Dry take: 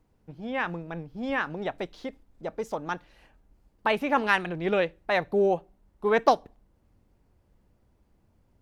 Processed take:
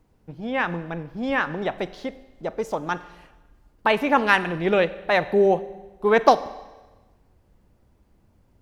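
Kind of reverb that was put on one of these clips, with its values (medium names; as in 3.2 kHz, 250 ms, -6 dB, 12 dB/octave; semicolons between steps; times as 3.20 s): Schroeder reverb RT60 1.2 s, combs from 31 ms, DRR 15 dB; trim +5 dB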